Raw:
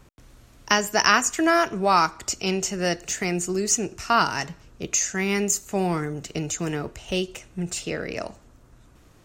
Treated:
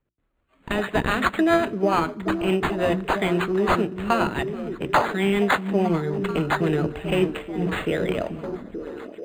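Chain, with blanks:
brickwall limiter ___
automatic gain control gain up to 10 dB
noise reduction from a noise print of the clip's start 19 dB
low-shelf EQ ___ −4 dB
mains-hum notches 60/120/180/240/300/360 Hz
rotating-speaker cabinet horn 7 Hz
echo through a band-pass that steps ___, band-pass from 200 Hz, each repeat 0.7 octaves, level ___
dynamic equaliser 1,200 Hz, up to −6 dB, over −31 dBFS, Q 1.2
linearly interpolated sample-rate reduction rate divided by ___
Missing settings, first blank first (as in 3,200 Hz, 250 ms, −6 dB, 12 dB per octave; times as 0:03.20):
−8 dBFS, 240 Hz, 437 ms, −3.5 dB, 8×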